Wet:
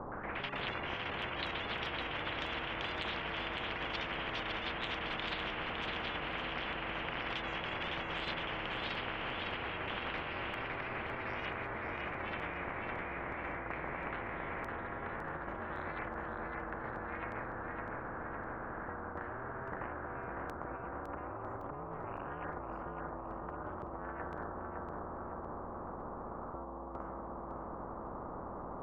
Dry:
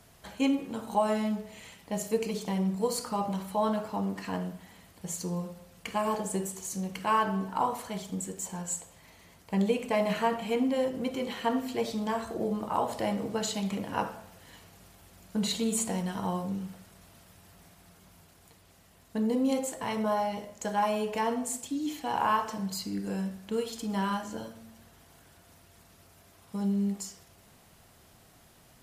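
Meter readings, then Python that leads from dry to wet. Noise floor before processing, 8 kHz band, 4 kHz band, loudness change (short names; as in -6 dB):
-59 dBFS, under -30 dB, -0.5 dB, -8.5 dB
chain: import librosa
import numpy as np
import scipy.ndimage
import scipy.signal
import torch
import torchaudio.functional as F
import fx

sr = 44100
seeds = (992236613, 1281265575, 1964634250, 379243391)

y = fx.wiener(x, sr, points=9)
y = scipy.signal.sosfilt(scipy.signal.ellip(4, 1.0, 80, 910.0, 'lowpass', fs=sr, output='sos'), y)
y = fx.over_compress(y, sr, threshold_db=-40.0, ratio=-1.0)
y = y * np.sin(2.0 * np.pi * 140.0 * np.arange(len(y)) / sr)
y = fx.echo_pitch(y, sr, ms=117, semitones=6, count=3, db_per_echo=-3.0)
y = fx.echo_feedback(y, sr, ms=558, feedback_pct=41, wet_db=-7.5)
y = fx.spectral_comp(y, sr, ratio=10.0)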